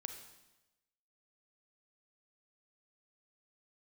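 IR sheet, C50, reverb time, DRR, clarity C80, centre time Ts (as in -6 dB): 7.0 dB, 1.0 s, 6.0 dB, 9.0 dB, 22 ms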